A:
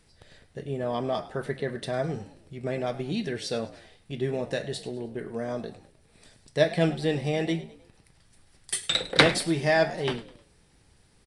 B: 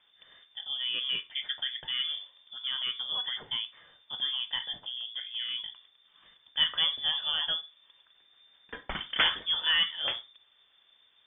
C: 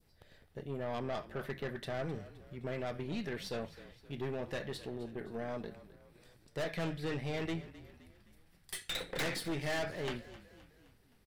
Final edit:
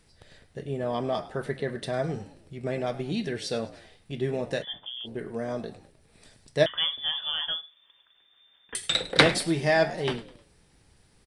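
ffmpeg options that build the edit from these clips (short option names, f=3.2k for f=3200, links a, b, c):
-filter_complex "[1:a]asplit=2[a][b];[0:a]asplit=3[c][d][e];[c]atrim=end=4.65[f];[a]atrim=start=4.61:end=5.08[g];[d]atrim=start=5.04:end=6.662[h];[b]atrim=start=6.658:end=8.752[i];[e]atrim=start=8.748[j];[f][g]acrossfade=d=0.04:c1=tri:c2=tri[k];[k][h]acrossfade=d=0.04:c1=tri:c2=tri[l];[l][i]acrossfade=d=0.004:c1=hsin:c2=hsin[m];[m][j]acrossfade=d=0.004:c1=hsin:c2=hsin"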